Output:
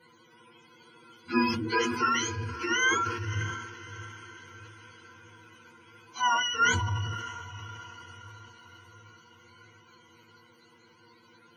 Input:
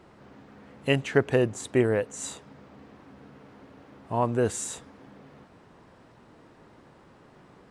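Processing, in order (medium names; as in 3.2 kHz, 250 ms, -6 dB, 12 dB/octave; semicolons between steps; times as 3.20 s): spectrum inverted on a logarithmic axis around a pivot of 830 Hz; rippled EQ curve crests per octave 1.9, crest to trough 15 dB; time stretch by phase-locked vocoder 1.5×; echo that smears into a reverb 603 ms, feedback 51%, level -13 dB; reverberation RT60 0.35 s, pre-delay 3 ms, DRR 18.5 dB; decay stretcher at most 49 dB/s; trim -9 dB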